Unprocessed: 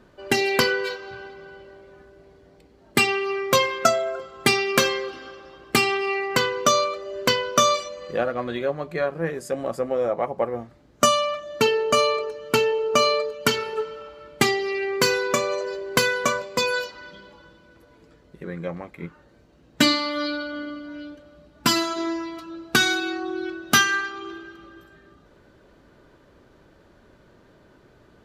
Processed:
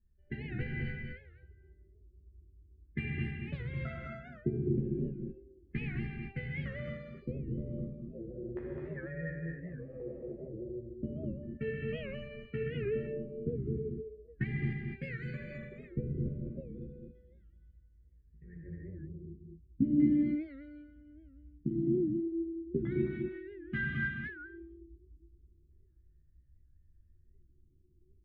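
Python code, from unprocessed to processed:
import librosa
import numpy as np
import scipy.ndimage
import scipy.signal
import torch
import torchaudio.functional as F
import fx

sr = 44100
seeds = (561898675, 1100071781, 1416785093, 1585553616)

p1 = fx.bin_expand(x, sr, power=1.5)
p2 = fx.tone_stack(p1, sr, knobs='10-0-1')
p3 = fx.fixed_phaser(p2, sr, hz=2400.0, stages=4)
p4 = fx.filter_lfo_lowpass(p3, sr, shape='square', hz=0.35, low_hz=370.0, high_hz=1800.0, q=5.8)
p5 = fx.tilt_eq(p4, sr, slope=-2.0)
p6 = fx.notch(p5, sr, hz=1500.0, q=24.0)
p7 = fx.doubler(p6, sr, ms=14.0, db=-2.5)
p8 = p7 + fx.echo_single(p7, sr, ms=209, db=-4.0, dry=0)
p9 = fx.rev_gated(p8, sr, seeds[0], gate_ms=320, shape='flat', drr_db=-4.0)
y = fx.record_warp(p9, sr, rpm=78.0, depth_cents=160.0)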